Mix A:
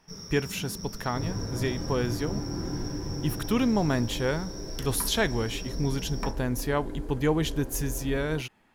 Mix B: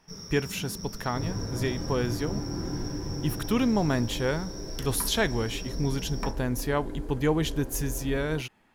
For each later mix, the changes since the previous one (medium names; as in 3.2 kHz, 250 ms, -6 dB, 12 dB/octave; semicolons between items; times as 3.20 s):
no change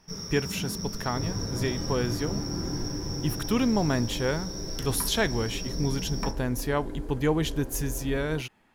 first sound +5.0 dB